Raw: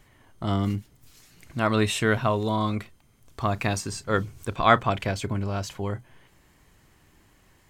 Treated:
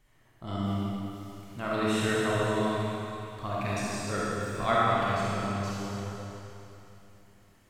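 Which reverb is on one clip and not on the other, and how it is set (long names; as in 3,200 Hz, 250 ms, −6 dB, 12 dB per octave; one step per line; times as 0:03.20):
comb and all-pass reverb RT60 3 s, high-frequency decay 1×, pre-delay 5 ms, DRR −7.5 dB
level −12 dB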